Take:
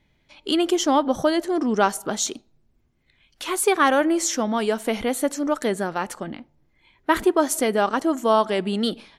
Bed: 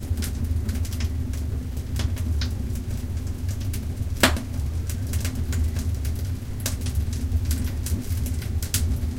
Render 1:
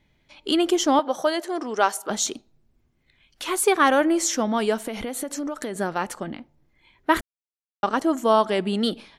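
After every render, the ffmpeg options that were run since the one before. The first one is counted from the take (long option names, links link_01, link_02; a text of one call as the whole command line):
ffmpeg -i in.wav -filter_complex "[0:a]asettb=1/sr,asplit=3[link_01][link_02][link_03];[link_01]atrim=end=0.994[link_04];[link_02]atrim=start=0.99:end=2.1,asetpts=PTS-STARTPTS,afade=type=in:duration=0.004:curve=qsin,afade=type=out:start_time=1.106:duration=0.004:curve=qsin,highpass=460[link_05];[link_03]atrim=start=2.096[link_06];[link_04][link_05]acrossfade=duration=0.004:curve1=hsin:curve2=qsin[link_07];[link_07][link_06]acrossfade=duration=0.004:curve1=qsin:curve2=hsin,asettb=1/sr,asplit=3[link_08][link_09][link_10];[link_08]atrim=end=4.814[link_11];[link_09]atrim=start=4.81:end=5.76,asetpts=PTS-STARTPTS,afade=type=in:duration=0.004:curve=qsin,afade=type=out:start_time=0.946:duration=0.004:curve=qsin,acompressor=threshold=-25dB:ratio=10:attack=3.2:release=140:knee=1:detection=peak[link_12];[link_10]atrim=start=5.756[link_13];[link_11][link_12]acrossfade=duration=0.004:curve1=hsin:curve2=qsin[link_14];[link_14][link_13]acrossfade=duration=0.004:curve1=qsin:curve2=hsin,asplit=3[link_15][link_16][link_17];[link_15]atrim=end=7.21,asetpts=PTS-STARTPTS,afade=type=out:start_time=7.206:duration=0.004:curve=hsin[link_18];[link_16]atrim=start=7.21:end=7.83,asetpts=PTS-STARTPTS,volume=0[link_19];[link_17]atrim=start=7.83,asetpts=PTS-STARTPTS,afade=type=in:duration=0.004:curve=hsin[link_20];[link_18][link_19][link_20]concat=n=3:v=0:a=1" out.wav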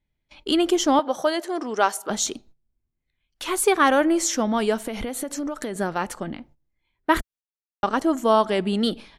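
ffmpeg -i in.wav -af "agate=range=-18dB:threshold=-51dB:ratio=16:detection=peak,lowshelf=frequency=80:gain=10.5" out.wav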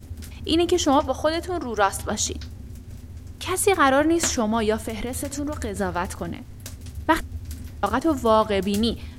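ffmpeg -i in.wav -i bed.wav -filter_complex "[1:a]volume=-10.5dB[link_01];[0:a][link_01]amix=inputs=2:normalize=0" out.wav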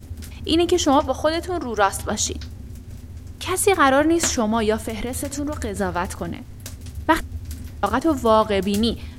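ffmpeg -i in.wav -af "volume=2dB" out.wav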